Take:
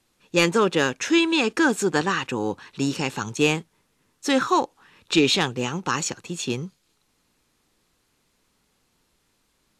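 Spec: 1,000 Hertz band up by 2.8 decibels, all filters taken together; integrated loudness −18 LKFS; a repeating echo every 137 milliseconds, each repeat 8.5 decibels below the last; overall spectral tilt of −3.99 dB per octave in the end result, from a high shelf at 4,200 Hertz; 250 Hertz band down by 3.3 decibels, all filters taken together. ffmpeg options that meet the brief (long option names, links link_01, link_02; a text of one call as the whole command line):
ffmpeg -i in.wav -af "equalizer=frequency=250:width_type=o:gain=-5,equalizer=frequency=1000:width_type=o:gain=4,highshelf=frequency=4200:gain=-6,aecho=1:1:137|274|411|548:0.376|0.143|0.0543|0.0206,volume=5.5dB" out.wav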